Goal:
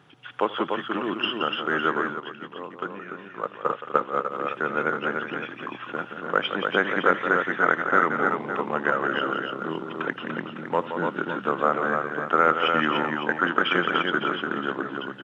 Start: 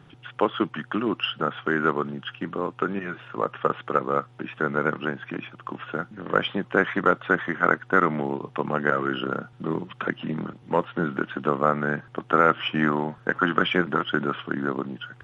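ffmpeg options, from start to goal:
-filter_complex "[0:a]highpass=f=390:p=1,aecho=1:1:81|173|293|557:0.112|0.376|0.596|0.282,asplit=3[a][b][c];[a]afade=t=out:st=2.12:d=0.02[d];[b]agate=range=-7dB:threshold=-23dB:ratio=16:detection=peak,afade=t=in:st=2.12:d=0.02,afade=t=out:st=4.3:d=0.02[e];[c]afade=t=in:st=4.3:d=0.02[f];[d][e][f]amix=inputs=3:normalize=0"

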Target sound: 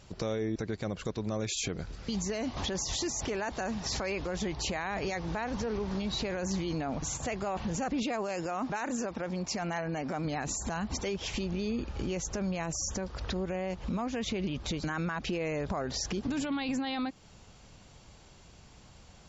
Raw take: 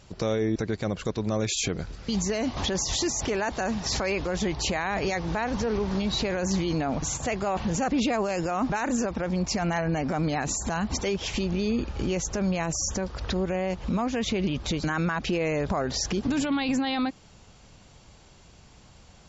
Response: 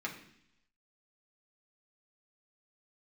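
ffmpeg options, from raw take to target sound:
-filter_complex "[0:a]asettb=1/sr,asplit=3[a][b][c];[a]atrim=end=8.034[d];[b]atrim=start=8.03:end=10.25,asetpts=PTS-STARTPTS,afade=t=in:d=0.004:c=qsin,afade=t=out:st=2.216:d=0.004:c=qsin,highpass=f=180:p=1[e];[c]atrim=start=10.246[f];[d][e]acrossfade=d=0.004:c1=hsin:c2=qsin[g];[g][f]acrossfade=d=0.004:c1=qsin:c2=hsin,acompressor=threshold=-35dB:ratio=1.5,volume=-2dB"

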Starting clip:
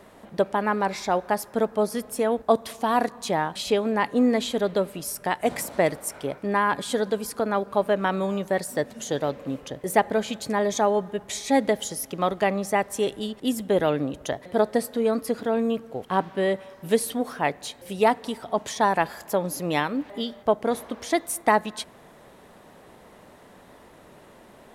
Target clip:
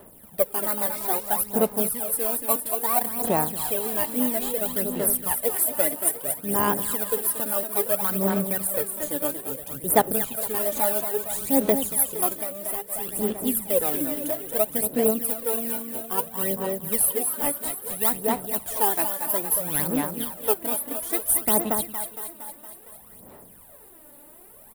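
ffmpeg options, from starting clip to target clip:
-filter_complex "[0:a]asplit=2[a][b];[b]acrusher=samples=18:mix=1:aa=0.000001:lfo=1:lforange=10.8:lforate=2.3,volume=-3dB[c];[a][c]amix=inputs=2:normalize=0,asettb=1/sr,asplit=3[d][e][f];[d]atrim=end=5.494[g];[e]atrim=start=5.49:end=6.28,asetpts=PTS-STARTPTS,afade=t=in:d=0.004:c=qsin,afade=t=out:st=0.786:d=0.004:c=qsin,highpass=150[h];[f]atrim=start=6.276[i];[g][h]acrossfade=d=0.004:c1=hsin:c2=qsin[j];[j][i]acrossfade=d=0.004:c1=qsin:c2=hsin,asplit=2[k][l];[l]aecho=0:1:231|462|693|924|1155|1386|1617|1848:0.447|0.268|0.161|0.0965|0.0579|0.0347|0.0208|0.0125[m];[k][m]amix=inputs=2:normalize=0,aphaser=in_gain=1:out_gain=1:delay=3.5:decay=0.66:speed=0.6:type=sinusoidal,asettb=1/sr,asplit=3[n][o][p];[n]atrim=end=12.384[q];[o]atrim=start=12.38:end=13.09,asetpts=PTS-STARTPTS,afade=t=in:d=0.004:c=qsin,afade=t=out:st=0.706:d=0.004:c=qsin,acompressor=threshold=-20dB:ratio=10[r];[p]atrim=start=13.086[s];[q][r]acrossfade=d=0.004:c1=hsin:c2=qsin[t];[t][s]acrossfade=d=0.004:c1=qsin:c2=hsin,aexciter=amount=6.9:drive=9.9:freq=8.9k,volume=-12dB"

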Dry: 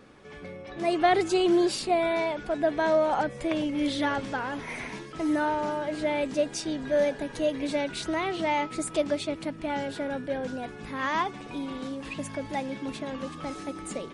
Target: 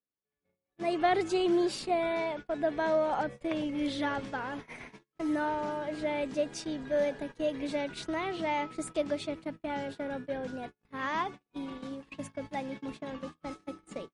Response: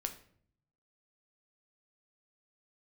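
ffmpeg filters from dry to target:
-af "agate=range=-43dB:threshold=-35dB:ratio=16:detection=peak,highshelf=f=6.2k:g=-5,volume=-4.5dB"

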